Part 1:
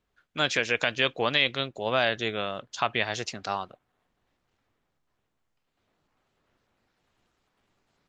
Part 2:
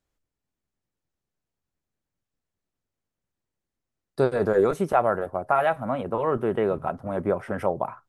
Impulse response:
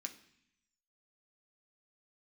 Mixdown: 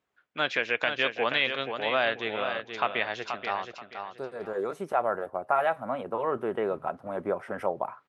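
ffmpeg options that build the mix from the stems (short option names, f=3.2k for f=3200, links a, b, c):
-filter_complex "[0:a]lowpass=2.7k,volume=0.5dB,asplit=3[a][b][c];[b]volume=-7dB[d];[1:a]highshelf=f=5.2k:g=-5.5,volume=-2dB[e];[c]apad=whole_len=356680[f];[e][f]sidechaincompress=threshold=-39dB:ratio=8:attack=9.4:release=1330[g];[d]aecho=0:1:480|960|1440|1920:1|0.27|0.0729|0.0197[h];[a][g][h]amix=inputs=3:normalize=0,highpass=f=420:p=1"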